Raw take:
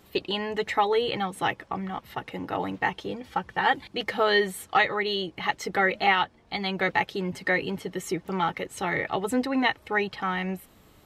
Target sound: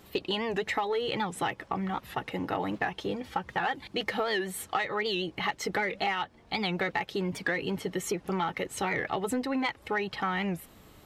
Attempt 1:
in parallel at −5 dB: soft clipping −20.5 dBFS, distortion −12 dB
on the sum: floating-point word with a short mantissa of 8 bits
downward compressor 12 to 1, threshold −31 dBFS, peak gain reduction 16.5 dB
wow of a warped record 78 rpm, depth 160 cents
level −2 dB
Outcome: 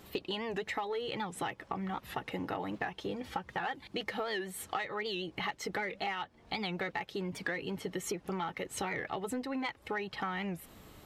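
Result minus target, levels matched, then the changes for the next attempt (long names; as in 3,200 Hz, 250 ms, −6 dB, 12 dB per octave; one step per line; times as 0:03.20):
downward compressor: peak gain reduction +6.5 dB
change: downward compressor 12 to 1, threshold −24 dBFS, peak gain reduction 10 dB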